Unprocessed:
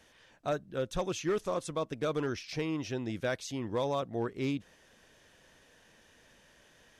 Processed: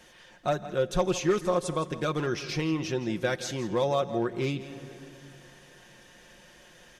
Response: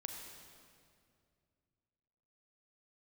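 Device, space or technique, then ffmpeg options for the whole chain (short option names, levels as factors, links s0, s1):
ducked reverb: -filter_complex "[0:a]asplit=3[s0][s1][s2];[1:a]atrim=start_sample=2205[s3];[s1][s3]afir=irnorm=-1:irlink=0[s4];[s2]apad=whole_len=308684[s5];[s4][s5]sidechaincompress=threshold=0.0112:ratio=8:attack=11:release=262,volume=0.75[s6];[s0][s6]amix=inputs=2:normalize=0,aecho=1:1:5.6:0.54,aecho=1:1:167:0.188,volume=1.41"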